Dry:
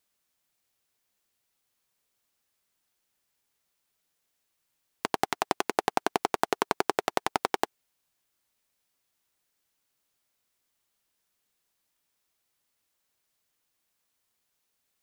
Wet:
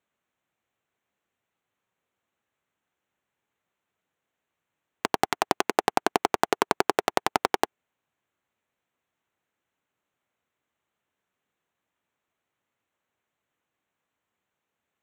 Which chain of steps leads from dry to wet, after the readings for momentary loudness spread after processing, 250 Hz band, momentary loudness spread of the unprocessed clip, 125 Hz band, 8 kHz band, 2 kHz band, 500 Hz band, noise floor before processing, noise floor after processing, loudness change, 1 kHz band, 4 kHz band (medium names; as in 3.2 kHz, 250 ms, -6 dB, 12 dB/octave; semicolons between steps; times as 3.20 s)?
4 LU, +3.5 dB, 4 LU, +3.0 dB, +3.5 dB, +3.5 dB, +3.5 dB, -79 dBFS, -85 dBFS, +3.5 dB, +3.5 dB, +3.5 dB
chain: local Wiener filter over 9 samples; high-pass 76 Hz; trim +3.5 dB